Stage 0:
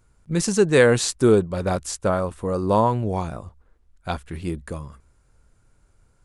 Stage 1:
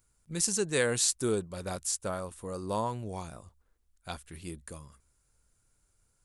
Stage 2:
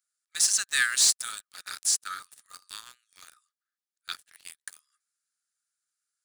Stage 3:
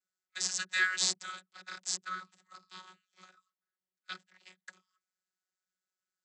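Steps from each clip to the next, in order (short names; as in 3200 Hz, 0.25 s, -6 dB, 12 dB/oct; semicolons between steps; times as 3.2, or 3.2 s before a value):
pre-emphasis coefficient 0.8
rippled Chebyshev high-pass 1200 Hz, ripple 6 dB; sample leveller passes 3
vocoder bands 32, saw 185 Hz; gain -6 dB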